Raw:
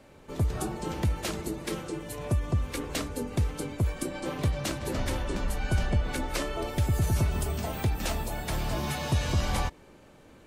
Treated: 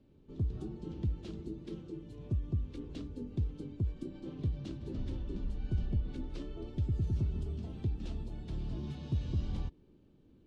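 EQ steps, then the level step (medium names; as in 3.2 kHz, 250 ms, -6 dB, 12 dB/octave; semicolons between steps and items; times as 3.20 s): tape spacing loss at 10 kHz 24 dB; high-order bell 1.1 kHz -15 dB 2.5 oct; treble shelf 5.1 kHz -9 dB; -6.0 dB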